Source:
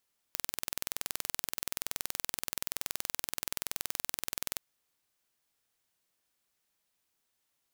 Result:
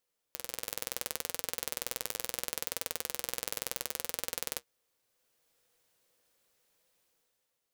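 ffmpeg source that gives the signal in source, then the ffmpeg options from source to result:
-f lavfi -i "aevalsrc='0.531*eq(mod(n,2090),0)':duration=4.24:sample_rate=44100"
-af "equalizer=frequency=500:width=3.5:gain=11.5,dynaudnorm=framelen=100:gausssize=13:maxgain=10dB,flanger=delay=5.4:depth=3.6:regen=-60:speed=0.71:shape=triangular"

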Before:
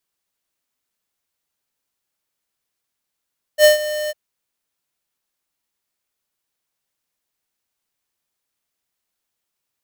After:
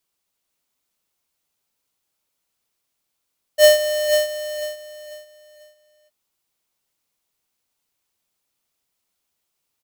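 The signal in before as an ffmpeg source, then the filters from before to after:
-f lavfi -i "aevalsrc='0.398*(2*lt(mod(605*t,1),0.5)-1)':duration=0.552:sample_rate=44100,afade=type=in:duration=0.065,afade=type=out:start_time=0.065:duration=0.13:silence=0.168,afade=type=out:start_time=0.52:duration=0.032"
-filter_complex "[0:a]equalizer=frequency=1700:width_type=o:width=0.39:gain=-4.5,asplit=2[link_01][link_02];[link_02]volume=21.5dB,asoftclip=hard,volume=-21.5dB,volume=-11dB[link_03];[link_01][link_03]amix=inputs=2:normalize=0,aecho=1:1:493|986|1479|1972:0.473|0.142|0.0426|0.0128"

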